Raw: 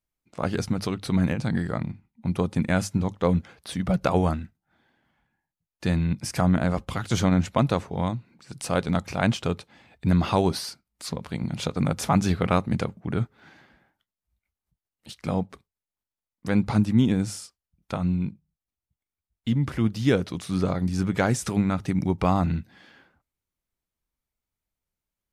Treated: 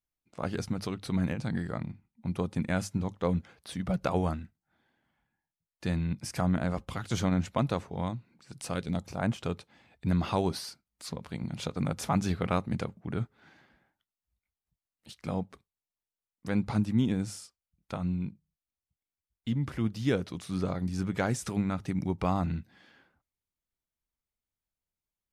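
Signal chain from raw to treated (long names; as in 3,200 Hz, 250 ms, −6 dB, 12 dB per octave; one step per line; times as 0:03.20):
0:08.72–0:09.37: parametric band 660 Hz → 4,800 Hz −10 dB 1.3 octaves
level −6.5 dB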